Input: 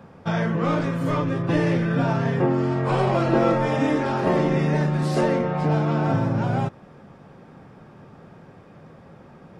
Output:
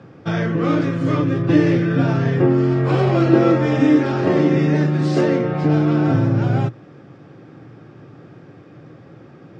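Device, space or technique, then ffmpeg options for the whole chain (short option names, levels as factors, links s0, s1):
car door speaker: -af "highpass=100,equalizer=f=120:t=q:w=4:g=9,equalizer=f=210:t=q:w=4:g=-6,equalizer=f=310:t=q:w=4:g=10,equalizer=f=630:t=q:w=4:g=-3,equalizer=f=940:t=q:w=4:g=-8,lowpass=f=6900:w=0.5412,lowpass=f=6900:w=1.3066,volume=1.41"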